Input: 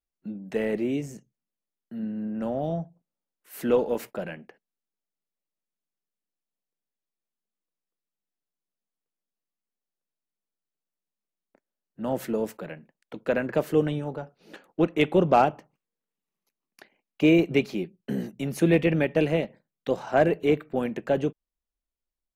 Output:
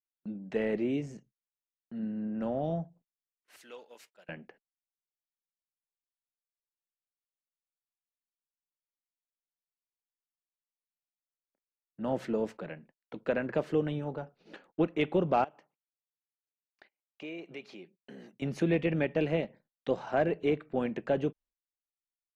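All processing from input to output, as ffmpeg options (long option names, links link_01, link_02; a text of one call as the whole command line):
ffmpeg -i in.wav -filter_complex "[0:a]asettb=1/sr,asplit=3[link_01][link_02][link_03];[link_01]atrim=end=3.564[link_04];[link_02]atrim=start=3.56:end=4.29,asetpts=PTS-STARTPTS,afade=type=in:duration=0.004:curve=qsin,afade=type=out:start_time=0.726:duration=0.004:curve=qsin,aderivative,agate=range=-33dB:threshold=-51dB:ratio=3:release=100:detection=peak,volume=32.5dB,asoftclip=hard,volume=-32.5dB[link_05];[link_03]atrim=start=4.286[link_06];[link_04][link_05]acrossfade=duration=0.004:curve1=hsin:curve2=qsin[link_07];[link_07][link_06]acrossfade=duration=0.004:curve1=qsin:curve2=hsin,asettb=1/sr,asplit=3[link_08][link_09][link_10];[link_08]atrim=end=15.444[link_11];[link_09]atrim=start=15.44:end=18.42,asetpts=PTS-STARTPTS,afade=type=in:duration=0.004:curve=qsin,afade=type=out:start_time=2.976:duration=0.004:curve=qsin,highpass=frequency=660:poles=1,acompressor=threshold=-46dB:ratio=2:attack=3.2:release=140:knee=1:detection=peak[link_12];[link_10]atrim=start=18.416[link_13];[link_11][link_12]acrossfade=duration=0.004:curve1=hsin:curve2=qsin[link_14];[link_14][link_13]acrossfade=duration=0.004:curve1=qsin:curve2=hsin,agate=range=-22dB:threshold=-56dB:ratio=16:detection=peak,lowpass=4900,alimiter=limit=-14dB:level=0:latency=1:release=312,volume=-3.5dB" out.wav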